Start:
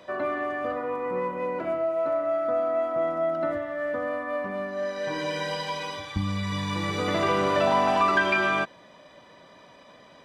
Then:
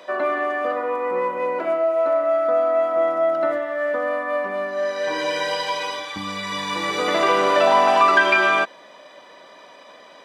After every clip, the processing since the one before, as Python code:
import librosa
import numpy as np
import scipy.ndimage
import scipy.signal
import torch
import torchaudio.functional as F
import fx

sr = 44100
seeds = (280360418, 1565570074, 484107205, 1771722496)

y = scipy.signal.sosfilt(scipy.signal.butter(2, 370.0, 'highpass', fs=sr, output='sos'), x)
y = y * librosa.db_to_amplitude(7.0)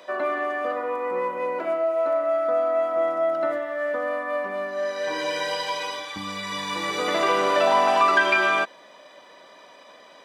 y = fx.high_shelf(x, sr, hz=6400.0, db=4.0)
y = y * librosa.db_to_amplitude(-3.5)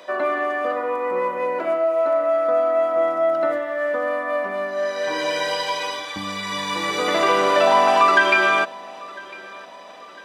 y = fx.echo_feedback(x, sr, ms=1002, feedback_pct=47, wet_db=-22.0)
y = y * librosa.db_to_amplitude(3.5)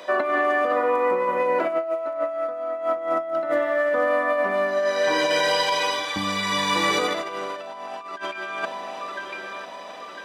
y = fx.over_compress(x, sr, threshold_db=-23.0, ratio=-0.5)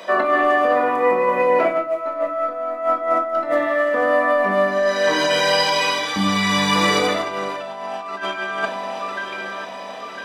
y = fx.room_shoebox(x, sr, seeds[0], volume_m3=370.0, walls='furnished', distance_m=1.6)
y = y * librosa.db_to_amplitude(2.5)